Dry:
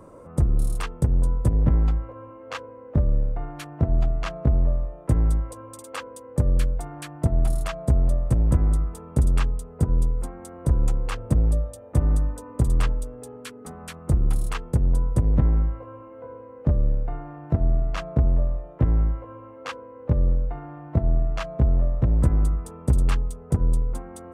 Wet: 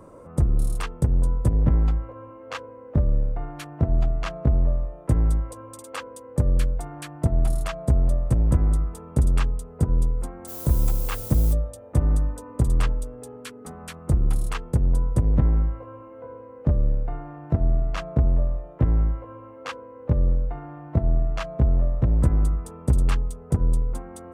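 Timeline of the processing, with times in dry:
0:10.47–0:11.52: background noise violet −37 dBFS

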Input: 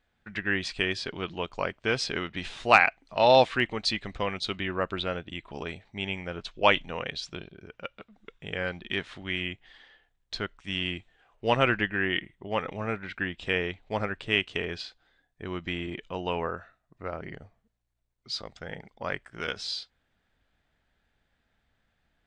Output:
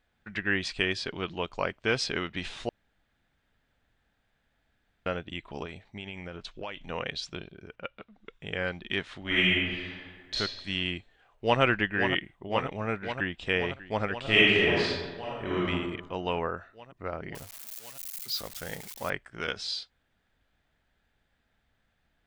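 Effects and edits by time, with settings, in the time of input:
0:02.69–0:05.06: fill with room tone
0:05.65–0:06.88: downward compressor, threshold −35 dBFS
0:07.75–0:08.31: low-pass filter 3,000 Hz → 6,300 Hz
0:09.21–0:10.35: thrown reverb, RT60 1.6 s, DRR −9 dB
0:10.96–0:11.61: delay throw 530 ms, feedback 80%, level −7.5 dB
0:13.01–0:13.52: delay throw 590 ms, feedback 40%, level −17 dB
0:14.21–0:15.65: thrown reverb, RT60 1.3 s, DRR −7 dB
0:17.35–0:19.10: spike at every zero crossing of −31.5 dBFS

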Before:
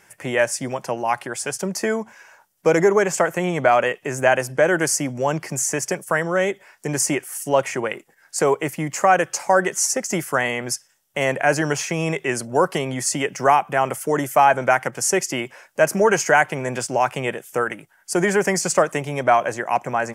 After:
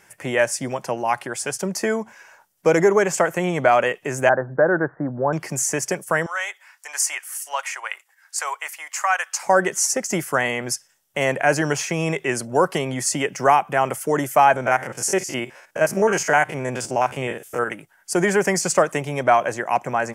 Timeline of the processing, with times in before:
0:04.29–0:05.33: Butterworth low-pass 1,700 Hz 72 dB per octave
0:06.26–0:09.43: high-pass filter 920 Hz 24 dB per octave
0:14.56–0:17.70: spectrum averaged block by block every 50 ms

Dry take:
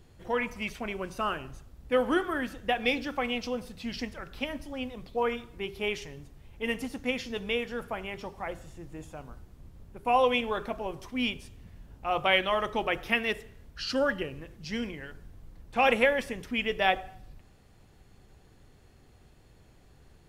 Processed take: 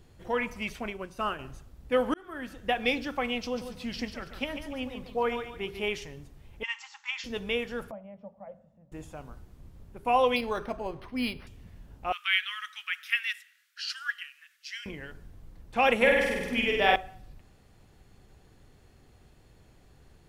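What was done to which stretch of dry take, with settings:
0:00.90–0:01.39: expander for the loud parts, over −41 dBFS
0:02.14–0:02.70: fade in
0:03.41–0:05.88: feedback echo with a high-pass in the loop 143 ms, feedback 32%, high-pass 170 Hz, level −8 dB
0:06.63–0:07.24: linear-phase brick-wall band-pass 790–8,000 Hz
0:07.91–0:08.92: pair of resonant band-passes 350 Hz, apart 1.5 octaves
0:10.36–0:11.47: linearly interpolated sample-rate reduction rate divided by 6×
0:12.12–0:14.86: Butterworth high-pass 1,400 Hz 48 dB per octave
0:15.96–0:16.96: flutter between parallel walls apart 8.3 metres, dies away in 1.1 s

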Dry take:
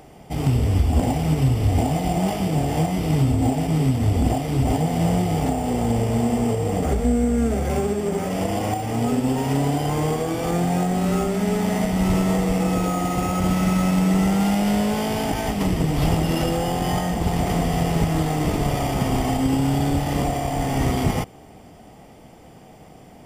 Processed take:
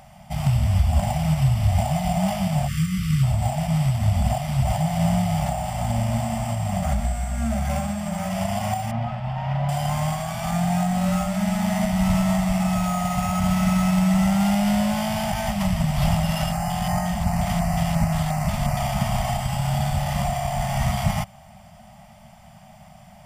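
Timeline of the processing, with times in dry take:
0:02.68–0:03.23: time-frequency box erased 390–1,100 Hz
0:08.91–0:09.69: high-frequency loss of the air 320 metres
0:16.52–0:18.77: auto-filter notch square 2.8 Hz 400–3,400 Hz
whole clip: brick-wall band-stop 230–560 Hz

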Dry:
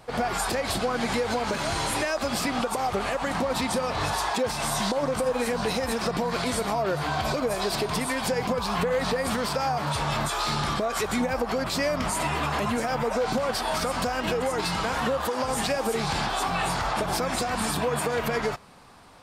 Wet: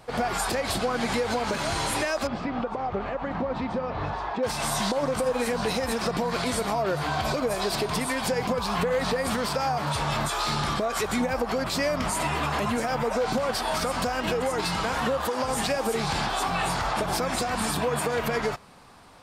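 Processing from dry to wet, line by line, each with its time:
0:02.27–0:04.43: head-to-tape spacing loss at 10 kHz 37 dB

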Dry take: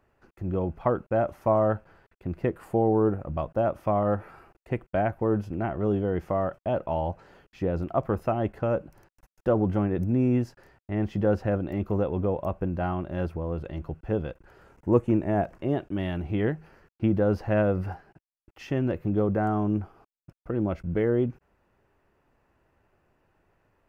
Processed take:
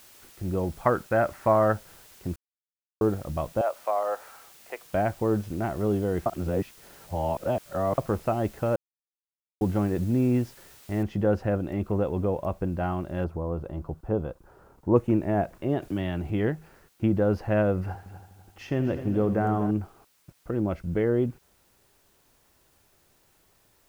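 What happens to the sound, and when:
0:00.85–0:01.72: parametric band 1,700 Hz +10 dB 1.1 octaves
0:02.36–0:03.01: silence
0:03.61–0:04.86: high-pass filter 520 Hz 24 dB per octave
0:06.26–0:07.98: reverse
0:08.76–0:09.61: silence
0:11.03: noise floor change −53 dB −66 dB
0:13.24–0:14.96: high shelf with overshoot 1,500 Hz −8 dB, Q 1.5
0:15.82–0:16.30: multiband upward and downward compressor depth 40%
0:17.81–0:19.71: echo machine with several playback heads 83 ms, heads first and third, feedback 55%, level −13 dB

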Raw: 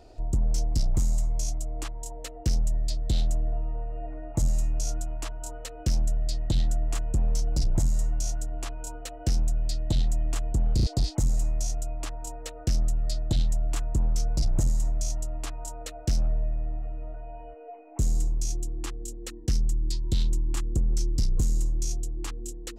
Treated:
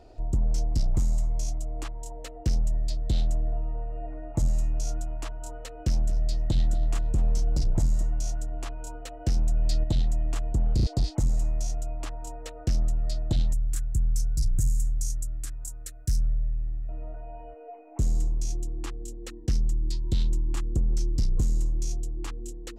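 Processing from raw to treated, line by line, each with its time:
0:05.79–0:08.03: feedback echo at a low word length 230 ms, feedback 35%, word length 10 bits, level −15 dB
0:09.36–0:09.84: envelope flattener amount 100%
0:13.53–0:16.89: drawn EQ curve 120 Hz 0 dB, 210 Hz −9 dB, 300 Hz −11 dB, 910 Hz −23 dB, 1,600 Hz −4 dB, 2,800 Hz −11 dB, 4,500 Hz −3 dB, 9,400 Hz +11 dB
whole clip: high-shelf EQ 4,000 Hz −6.5 dB

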